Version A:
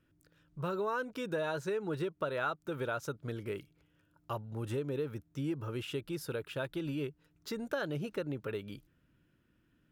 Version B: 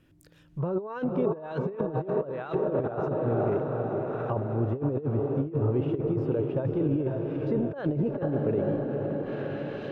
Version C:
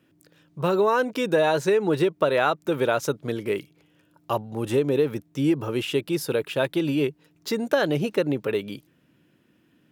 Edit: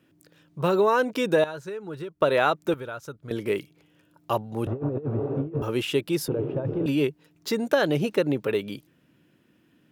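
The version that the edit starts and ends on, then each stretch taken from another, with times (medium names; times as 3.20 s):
C
1.44–2.22 s: from A
2.74–3.31 s: from A
4.67–5.62 s: from B
6.28–6.86 s: from B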